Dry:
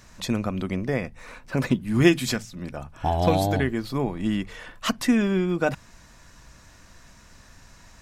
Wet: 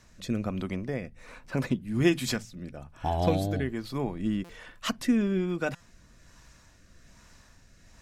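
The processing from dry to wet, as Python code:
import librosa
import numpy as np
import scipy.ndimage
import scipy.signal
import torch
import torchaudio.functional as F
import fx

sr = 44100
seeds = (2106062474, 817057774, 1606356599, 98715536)

y = fx.rotary(x, sr, hz=1.2)
y = fx.buffer_glitch(y, sr, at_s=(4.44, 5.75), block=256, repeats=8)
y = F.gain(torch.from_numpy(y), -3.5).numpy()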